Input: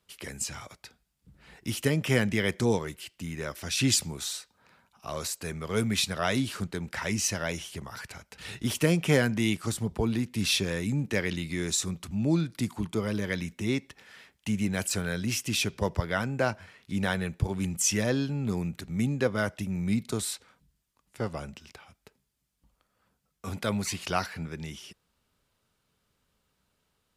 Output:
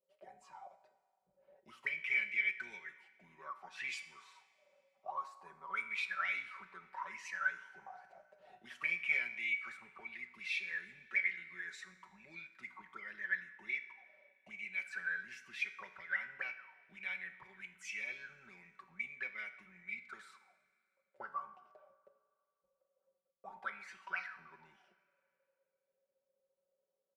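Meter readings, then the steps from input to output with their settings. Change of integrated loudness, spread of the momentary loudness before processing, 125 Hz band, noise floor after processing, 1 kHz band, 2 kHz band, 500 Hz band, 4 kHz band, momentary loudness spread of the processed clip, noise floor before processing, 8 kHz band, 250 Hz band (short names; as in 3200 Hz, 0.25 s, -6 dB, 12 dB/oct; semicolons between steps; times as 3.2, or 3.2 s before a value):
-10.5 dB, 14 LU, under -40 dB, under -85 dBFS, -9.5 dB, -2.5 dB, -28.5 dB, -19.5 dB, 20 LU, -76 dBFS, -29.5 dB, -36.5 dB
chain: octaver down 2 oct, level -6 dB; comb 5.3 ms, depth 90%; auto-wah 530–2300 Hz, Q 21, up, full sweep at -21 dBFS; resonator 61 Hz, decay 0.71 s, harmonics all, mix 60%; Schroeder reverb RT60 2.3 s, combs from 27 ms, DRR 18 dB; gain +11 dB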